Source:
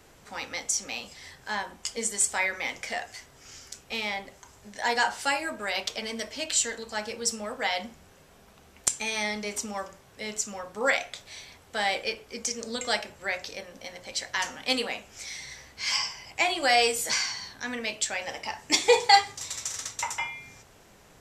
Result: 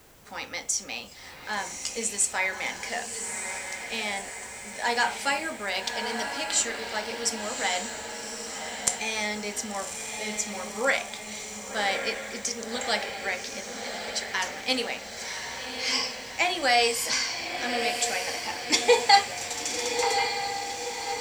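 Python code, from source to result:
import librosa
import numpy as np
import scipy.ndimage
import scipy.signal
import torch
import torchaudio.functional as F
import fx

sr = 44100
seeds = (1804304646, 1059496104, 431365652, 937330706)

y = fx.dmg_noise_colour(x, sr, seeds[0], colour='blue', level_db=-61.0)
y = fx.echo_diffused(y, sr, ms=1131, feedback_pct=54, wet_db=-6.0)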